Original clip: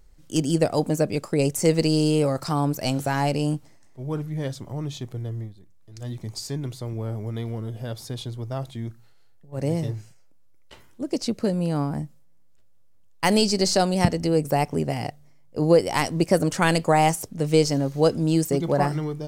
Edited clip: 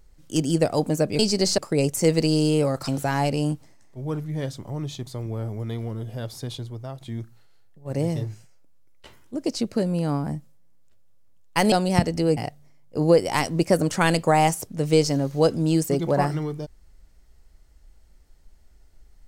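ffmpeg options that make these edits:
-filter_complex "[0:a]asplit=8[a][b][c][d][e][f][g][h];[a]atrim=end=1.192[i];[b]atrim=start=13.388:end=13.782[j];[c]atrim=start=1.188:end=2.492[k];[d]atrim=start=2.898:end=5.092[l];[e]atrim=start=6.738:end=8.68,asetpts=PTS-STARTPTS,afade=t=out:st=1.472:d=0.47:silence=0.375837[m];[f]atrim=start=8.68:end=13.392,asetpts=PTS-STARTPTS,afade=t=in:d=0.004:c=hsin:silence=0.375837[n];[g]atrim=start=13.778:end=14.432[o];[h]atrim=start=14.978[p];[i][j]acrossfade=d=0.004:c1=hsin:c2=hsin[q];[q][k]acrossfade=d=0.004:c1=hsin:c2=hsin[r];[r][l]acrossfade=d=0.004:c1=hsin:c2=hsin[s];[m][n]concat=n=2:v=0:a=1[t];[s][t]acrossfade=d=0.004:c1=hsin:c2=hsin[u];[u][o]acrossfade=d=0.004:c1=hsin:c2=hsin[v];[v][p]acrossfade=d=0.004:c1=hsin:c2=hsin"

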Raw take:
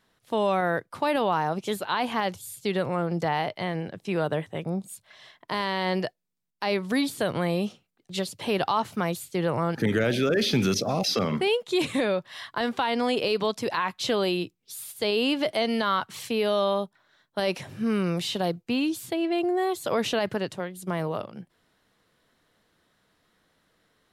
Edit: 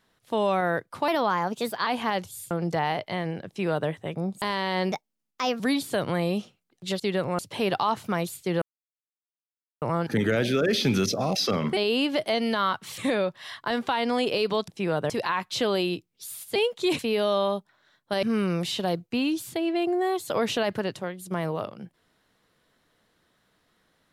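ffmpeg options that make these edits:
-filter_complex "[0:a]asplit=17[a][b][c][d][e][f][g][h][i][j][k][l][m][n][o][p][q];[a]atrim=end=1.084[r];[b]atrim=start=1.08:end=1.97,asetpts=PTS-STARTPTS,asetrate=49833,aresample=44100[s];[c]atrim=start=1.966:end=2.612[t];[d]atrim=start=2.998:end=4.912[u];[e]atrim=start=5.518:end=6.024[v];[f]atrim=start=6.02:end=6.87,asetpts=PTS-STARTPTS,asetrate=55125,aresample=44100[w];[g]atrim=start=6.866:end=8.272[x];[h]atrim=start=2.608:end=3.002[y];[i]atrim=start=8.268:end=9.5,asetpts=PTS-STARTPTS,afade=t=out:st=1.228:d=0.004:c=hsin,apad=pad_dur=1.2[z];[j]atrim=start=9.5:end=11.452,asetpts=PTS-STARTPTS,afade=t=in:d=0.004:c=hsin[aa];[k]atrim=start=15.038:end=16.252[ab];[l]atrim=start=11.878:end=13.582[ac];[m]atrim=start=3.958:end=4.382[ad];[n]atrim=start=13.578:end=15.042[ae];[o]atrim=start=11.448:end=11.882[af];[p]atrim=start=16.248:end=17.492[ag];[q]atrim=start=17.788[ah];[r][s]acrossfade=d=0.004:c1=hsin:c2=hsin[ai];[ai][t]acrossfade=d=0.004:c1=hsin:c2=hsin[aj];[aj][u]acrossfade=d=0.004:c1=hsin:c2=hsin[ak];[ak][v]acrossfade=d=0.004:c1=hsin:c2=hsin[al];[al][w]acrossfade=d=0.004:c1=hsin:c2=hsin[am];[am][x]acrossfade=d=0.004:c1=hsin:c2=hsin[an];[an][y]acrossfade=d=0.004:c1=hsin:c2=hsin[ao];[z][aa]concat=n=2:v=0:a=1[ap];[ao][ap]acrossfade=d=0.004:c1=hsin:c2=hsin[aq];[aq][ab]acrossfade=d=0.004:c1=hsin:c2=hsin[ar];[ar][ac]acrossfade=d=0.004:c1=hsin:c2=hsin[as];[as][ad]acrossfade=d=0.004:c1=hsin:c2=hsin[at];[at][ae]acrossfade=d=0.004:c1=hsin:c2=hsin[au];[au][af]acrossfade=d=0.004:c1=hsin:c2=hsin[av];[av][ag]acrossfade=d=0.004:c1=hsin:c2=hsin[aw];[aw][ah]acrossfade=d=0.004:c1=hsin:c2=hsin"

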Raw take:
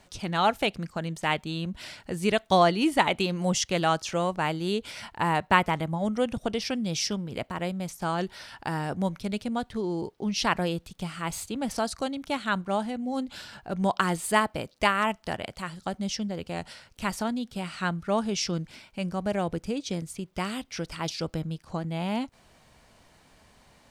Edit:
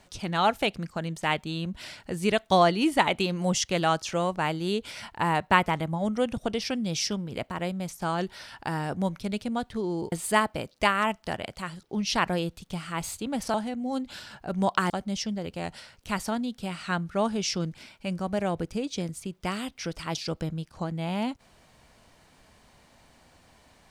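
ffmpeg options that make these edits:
-filter_complex "[0:a]asplit=5[a][b][c][d][e];[a]atrim=end=10.122[f];[b]atrim=start=14.118:end=15.832[g];[c]atrim=start=10.118:end=11.832[h];[d]atrim=start=12.758:end=14.122[i];[e]atrim=start=15.828[j];[f][g]acrossfade=d=0.004:c1=hsin:c2=hsin[k];[k][h]acrossfade=d=0.004:c1=hsin:c2=hsin[l];[l][i]acrossfade=d=0.004:c1=hsin:c2=hsin[m];[m][j]acrossfade=d=0.004:c1=hsin:c2=hsin"

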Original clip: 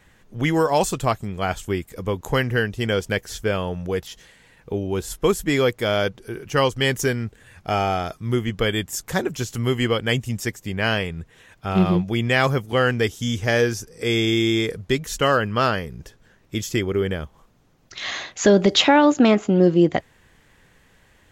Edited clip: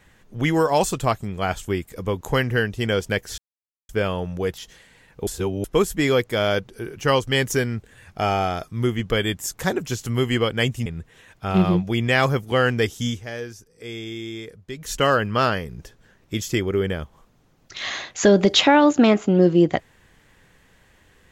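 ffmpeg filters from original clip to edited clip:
-filter_complex "[0:a]asplit=7[a][b][c][d][e][f][g];[a]atrim=end=3.38,asetpts=PTS-STARTPTS,afade=t=out:st=3.376:d=0.004:c=hsin,apad=pad_dur=0.51[h];[b]atrim=start=3.38:end=4.762,asetpts=PTS-STARTPTS,afade=t=in:d=0.004:c=hsin[i];[c]atrim=start=4.758:end=5.132,asetpts=PTS-STARTPTS,areverse[j];[d]atrim=start=5.128:end=10.352[k];[e]atrim=start=11.068:end=13.43,asetpts=PTS-STARTPTS,afade=t=out:st=2.212:d=0.15:silence=0.223872[l];[f]atrim=start=13.43:end=14.96,asetpts=PTS-STARTPTS,volume=-13dB[m];[g]atrim=start=14.96,asetpts=PTS-STARTPTS,afade=t=in:d=0.15:silence=0.223872[n];[h][i]concat=n=2:v=0:a=1[o];[o][j]acrossfade=d=0.004:c1=hsin:c2=hsin[p];[p][k]acrossfade=d=0.004:c1=hsin:c2=hsin[q];[l][m][n]concat=n=3:v=0:a=1[r];[q][r]acrossfade=d=0.004:c1=hsin:c2=hsin"

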